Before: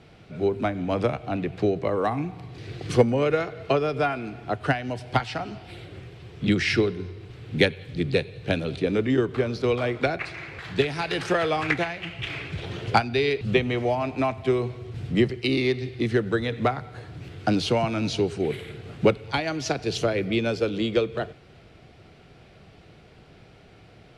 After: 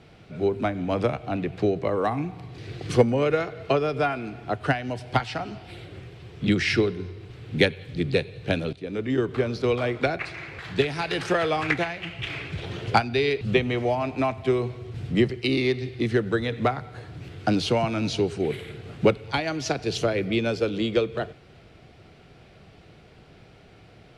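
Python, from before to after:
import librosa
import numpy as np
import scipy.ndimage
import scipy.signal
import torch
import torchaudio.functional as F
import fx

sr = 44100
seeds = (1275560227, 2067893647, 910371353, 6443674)

y = fx.edit(x, sr, fx.fade_in_from(start_s=8.73, length_s=0.58, floor_db=-16.5), tone=tone)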